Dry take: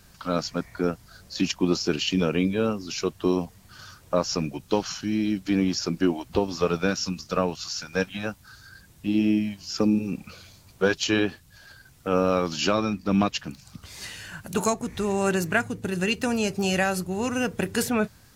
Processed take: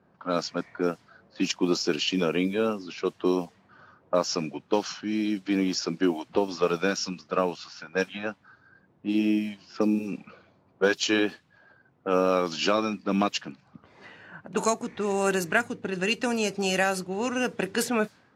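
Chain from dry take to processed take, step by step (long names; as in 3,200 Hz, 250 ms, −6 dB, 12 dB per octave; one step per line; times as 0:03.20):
low-pass that shuts in the quiet parts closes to 820 Hz, open at −19.5 dBFS
high-pass filter 230 Hz 12 dB per octave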